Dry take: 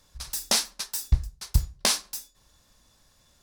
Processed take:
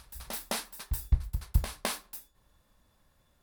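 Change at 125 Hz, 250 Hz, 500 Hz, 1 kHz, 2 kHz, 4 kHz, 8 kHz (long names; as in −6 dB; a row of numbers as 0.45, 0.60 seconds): −3.5, −3.5, −3.5, −4.0, −6.0, −13.0, −12.5 decibels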